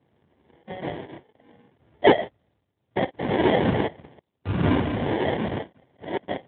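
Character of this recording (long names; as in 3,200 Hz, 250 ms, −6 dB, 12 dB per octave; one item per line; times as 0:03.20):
tremolo triangle 0.64 Hz, depth 90%
aliases and images of a low sample rate 1,300 Hz, jitter 0%
AMR narrowband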